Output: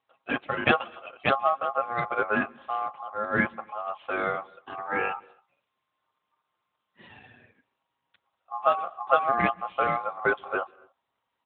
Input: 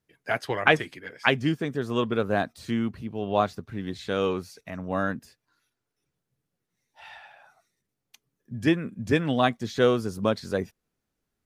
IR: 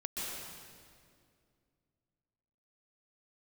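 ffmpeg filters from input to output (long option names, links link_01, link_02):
-filter_complex "[0:a]highshelf=frequency=2800:gain=-11.5,aecho=1:1:7.1:0.79,aeval=exprs='val(0)*sin(2*PI*950*n/s)':channel_layout=same,asplit=3[link_01][link_02][link_03];[link_01]afade=type=out:start_time=4.86:duration=0.02[link_04];[link_02]afreqshift=110,afade=type=in:start_time=4.86:duration=0.02,afade=type=out:start_time=7.08:duration=0.02[link_05];[link_03]afade=type=in:start_time=7.08:duration=0.02[link_06];[link_04][link_05][link_06]amix=inputs=3:normalize=0,asplit=2[link_07][link_08];[1:a]atrim=start_sample=2205,afade=type=out:start_time=0.34:duration=0.01,atrim=end_sample=15435[link_09];[link_08][link_09]afir=irnorm=-1:irlink=0,volume=-25dB[link_10];[link_07][link_10]amix=inputs=2:normalize=0,volume=1dB" -ar 8000 -c:a libopencore_amrnb -b:a 12200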